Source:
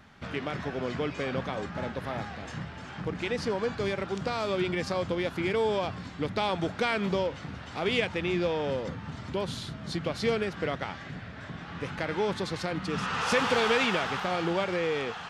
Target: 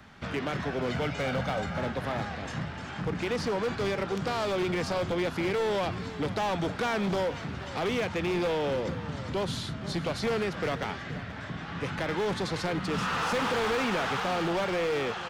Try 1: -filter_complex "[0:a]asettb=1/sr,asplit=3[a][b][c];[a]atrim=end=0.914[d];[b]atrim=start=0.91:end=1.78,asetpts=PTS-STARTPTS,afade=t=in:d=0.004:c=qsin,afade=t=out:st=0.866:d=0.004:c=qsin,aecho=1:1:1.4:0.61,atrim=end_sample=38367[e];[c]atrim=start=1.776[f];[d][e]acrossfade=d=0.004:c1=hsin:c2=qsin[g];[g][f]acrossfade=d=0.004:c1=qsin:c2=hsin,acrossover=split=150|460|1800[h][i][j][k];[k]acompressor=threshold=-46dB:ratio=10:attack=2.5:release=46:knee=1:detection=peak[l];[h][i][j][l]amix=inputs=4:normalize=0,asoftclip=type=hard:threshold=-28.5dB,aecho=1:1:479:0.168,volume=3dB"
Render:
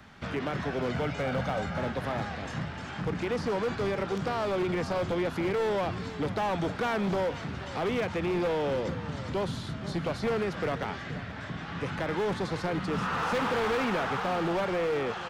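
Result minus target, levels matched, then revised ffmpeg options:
compressor: peak gain reduction +7.5 dB
-filter_complex "[0:a]asettb=1/sr,asplit=3[a][b][c];[a]atrim=end=0.914[d];[b]atrim=start=0.91:end=1.78,asetpts=PTS-STARTPTS,afade=t=in:d=0.004:c=qsin,afade=t=out:st=0.866:d=0.004:c=qsin,aecho=1:1:1.4:0.61,atrim=end_sample=38367[e];[c]atrim=start=1.776[f];[d][e]acrossfade=d=0.004:c1=hsin:c2=qsin[g];[g][f]acrossfade=d=0.004:c1=qsin:c2=hsin,acrossover=split=150|460|1800[h][i][j][k];[k]acompressor=threshold=-37.5dB:ratio=10:attack=2.5:release=46:knee=1:detection=peak[l];[h][i][j][l]amix=inputs=4:normalize=0,asoftclip=type=hard:threshold=-28.5dB,aecho=1:1:479:0.168,volume=3dB"

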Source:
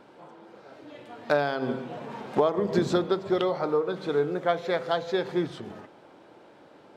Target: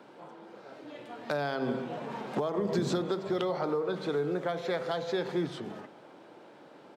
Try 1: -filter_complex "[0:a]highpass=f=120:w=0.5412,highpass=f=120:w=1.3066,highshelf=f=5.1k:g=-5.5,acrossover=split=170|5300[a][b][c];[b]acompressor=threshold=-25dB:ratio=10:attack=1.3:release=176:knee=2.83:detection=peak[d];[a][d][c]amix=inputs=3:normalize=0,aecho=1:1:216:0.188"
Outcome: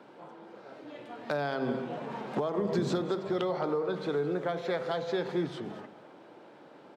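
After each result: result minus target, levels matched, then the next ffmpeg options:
echo-to-direct +6.5 dB; 8000 Hz band -3.5 dB
-filter_complex "[0:a]highpass=f=120:w=0.5412,highpass=f=120:w=1.3066,highshelf=f=5.1k:g=-5.5,acrossover=split=170|5300[a][b][c];[b]acompressor=threshold=-25dB:ratio=10:attack=1.3:release=176:knee=2.83:detection=peak[d];[a][d][c]amix=inputs=3:normalize=0,aecho=1:1:216:0.0891"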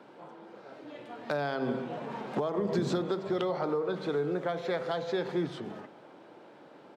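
8000 Hz band -3.5 dB
-filter_complex "[0:a]highpass=f=120:w=0.5412,highpass=f=120:w=1.3066,acrossover=split=170|5300[a][b][c];[b]acompressor=threshold=-25dB:ratio=10:attack=1.3:release=176:knee=2.83:detection=peak[d];[a][d][c]amix=inputs=3:normalize=0,aecho=1:1:216:0.0891"

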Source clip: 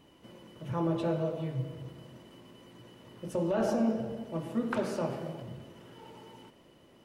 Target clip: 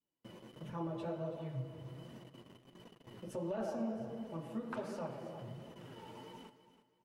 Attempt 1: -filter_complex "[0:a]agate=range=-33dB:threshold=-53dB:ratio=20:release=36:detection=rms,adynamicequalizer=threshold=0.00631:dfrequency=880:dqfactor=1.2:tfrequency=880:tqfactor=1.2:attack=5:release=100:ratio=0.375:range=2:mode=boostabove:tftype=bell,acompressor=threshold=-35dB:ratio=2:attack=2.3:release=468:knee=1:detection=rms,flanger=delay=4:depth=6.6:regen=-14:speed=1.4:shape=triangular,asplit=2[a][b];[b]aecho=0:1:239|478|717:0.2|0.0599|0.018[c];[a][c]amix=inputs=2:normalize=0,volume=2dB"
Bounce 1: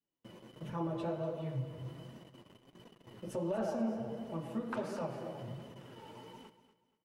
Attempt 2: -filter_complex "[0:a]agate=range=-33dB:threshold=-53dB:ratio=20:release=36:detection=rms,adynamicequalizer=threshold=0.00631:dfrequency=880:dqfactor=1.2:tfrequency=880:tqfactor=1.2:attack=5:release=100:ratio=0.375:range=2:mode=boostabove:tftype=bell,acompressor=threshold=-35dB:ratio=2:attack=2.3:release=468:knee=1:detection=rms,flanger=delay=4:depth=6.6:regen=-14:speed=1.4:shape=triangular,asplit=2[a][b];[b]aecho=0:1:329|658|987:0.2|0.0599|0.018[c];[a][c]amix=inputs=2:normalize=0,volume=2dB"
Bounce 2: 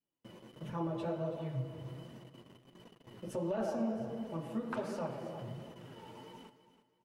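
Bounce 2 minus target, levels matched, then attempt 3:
compressor: peak gain reduction -3.5 dB
-filter_complex "[0:a]agate=range=-33dB:threshold=-53dB:ratio=20:release=36:detection=rms,adynamicequalizer=threshold=0.00631:dfrequency=880:dqfactor=1.2:tfrequency=880:tqfactor=1.2:attack=5:release=100:ratio=0.375:range=2:mode=boostabove:tftype=bell,acompressor=threshold=-42dB:ratio=2:attack=2.3:release=468:knee=1:detection=rms,flanger=delay=4:depth=6.6:regen=-14:speed=1.4:shape=triangular,asplit=2[a][b];[b]aecho=0:1:329|658|987:0.2|0.0599|0.018[c];[a][c]amix=inputs=2:normalize=0,volume=2dB"

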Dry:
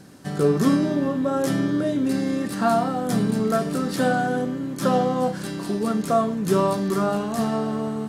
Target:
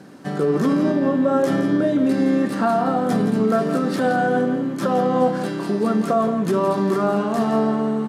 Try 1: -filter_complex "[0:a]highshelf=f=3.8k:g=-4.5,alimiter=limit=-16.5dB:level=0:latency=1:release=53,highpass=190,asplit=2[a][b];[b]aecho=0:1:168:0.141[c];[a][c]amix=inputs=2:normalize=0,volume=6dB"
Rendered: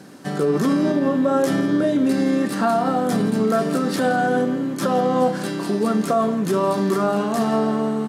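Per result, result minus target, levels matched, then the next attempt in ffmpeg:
8000 Hz band +6.0 dB; echo-to-direct -7 dB
-filter_complex "[0:a]highshelf=f=3.8k:g=-12.5,alimiter=limit=-16.5dB:level=0:latency=1:release=53,highpass=190,asplit=2[a][b];[b]aecho=0:1:168:0.141[c];[a][c]amix=inputs=2:normalize=0,volume=6dB"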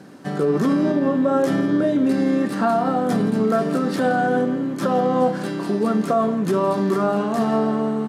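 echo-to-direct -7 dB
-filter_complex "[0:a]highshelf=f=3.8k:g=-12.5,alimiter=limit=-16.5dB:level=0:latency=1:release=53,highpass=190,asplit=2[a][b];[b]aecho=0:1:168:0.316[c];[a][c]amix=inputs=2:normalize=0,volume=6dB"

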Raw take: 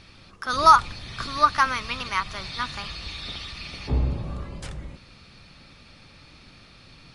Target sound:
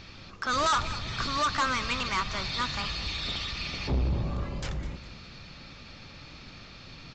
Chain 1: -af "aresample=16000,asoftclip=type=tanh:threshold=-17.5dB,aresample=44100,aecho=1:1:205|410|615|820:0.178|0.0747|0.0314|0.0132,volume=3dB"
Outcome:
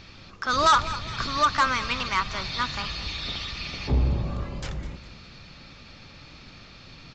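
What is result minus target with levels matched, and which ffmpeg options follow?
soft clip: distortion -5 dB
-af "aresample=16000,asoftclip=type=tanh:threshold=-26dB,aresample=44100,aecho=1:1:205|410|615|820:0.178|0.0747|0.0314|0.0132,volume=3dB"

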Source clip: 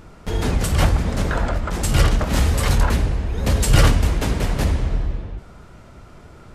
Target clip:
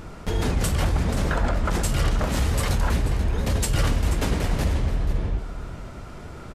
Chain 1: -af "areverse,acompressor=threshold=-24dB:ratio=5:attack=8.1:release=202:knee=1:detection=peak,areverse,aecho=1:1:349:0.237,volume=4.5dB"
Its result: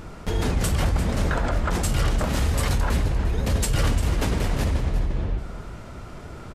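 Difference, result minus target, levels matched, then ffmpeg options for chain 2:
echo 0.135 s early
-af "areverse,acompressor=threshold=-24dB:ratio=5:attack=8.1:release=202:knee=1:detection=peak,areverse,aecho=1:1:484:0.237,volume=4.5dB"

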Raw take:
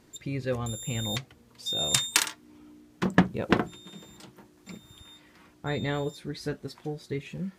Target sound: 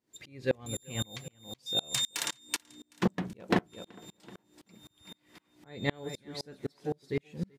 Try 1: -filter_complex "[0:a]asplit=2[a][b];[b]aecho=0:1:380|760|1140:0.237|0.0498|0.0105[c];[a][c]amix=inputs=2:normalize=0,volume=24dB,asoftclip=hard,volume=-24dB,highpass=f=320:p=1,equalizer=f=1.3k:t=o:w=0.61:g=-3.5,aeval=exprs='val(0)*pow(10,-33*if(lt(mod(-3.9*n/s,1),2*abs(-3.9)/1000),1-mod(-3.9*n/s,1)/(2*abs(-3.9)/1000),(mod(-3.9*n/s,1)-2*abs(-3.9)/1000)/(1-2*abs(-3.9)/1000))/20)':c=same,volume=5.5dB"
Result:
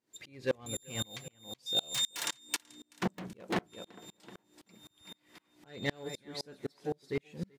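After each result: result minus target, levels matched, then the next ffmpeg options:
overloaded stage: distortion +11 dB; 125 Hz band -3.0 dB
-filter_complex "[0:a]asplit=2[a][b];[b]aecho=0:1:380|760|1140:0.237|0.0498|0.0105[c];[a][c]amix=inputs=2:normalize=0,volume=12dB,asoftclip=hard,volume=-12dB,highpass=f=320:p=1,equalizer=f=1.3k:t=o:w=0.61:g=-3.5,aeval=exprs='val(0)*pow(10,-33*if(lt(mod(-3.9*n/s,1),2*abs(-3.9)/1000),1-mod(-3.9*n/s,1)/(2*abs(-3.9)/1000),(mod(-3.9*n/s,1)-2*abs(-3.9)/1000)/(1-2*abs(-3.9)/1000))/20)':c=same,volume=5.5dB"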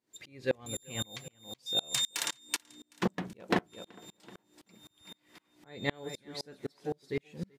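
125 Hz band -3.5 dB
-filter_complex "[0:a]asplit=2[a][b];[b]aecho=0:1:380|760|1140:0.237|0.0498|0.0105[c];[a][c]amix=inputs=2:normalize=0,volume=12dB,asoftclip=hard,volume=-12dB,highpass=f=150:p=1,equalizer=f=1.3k:t=o:w=0.61:g=-3.5,aeval=exprs='val(0)*pow(10,-33*if(lt(mod(-3.9*n/s,1),2*abs(-3.9)/1000),1-mod(-3.9*n/s,1)/(2*abs(-3.9)/1000),(mod(-3.9*n/s,1)-2*abs(-3.9)/1000)/(1-2*abs(-3.9)/1000))/20)':c=same,volume=5.5dB"

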